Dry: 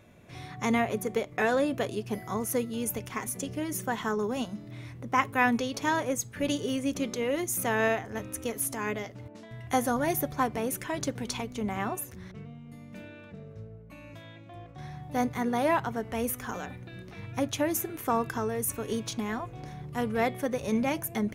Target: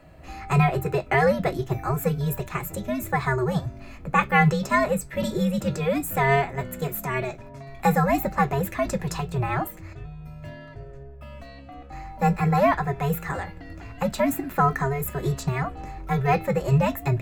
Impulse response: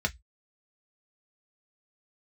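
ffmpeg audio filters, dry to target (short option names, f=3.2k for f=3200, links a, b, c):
-filter_complex "[0:a]afreqshift=-110,asetrate=54684,aresample=44100,asplit=2[a][b];[1:a]atrim=start_sample=2205[c];[b][c]afir=irnorm=-1:irlink=0,volume=-7dB[d];[a][d]amix=inputs=2:normalize=0,volume=2.5dB"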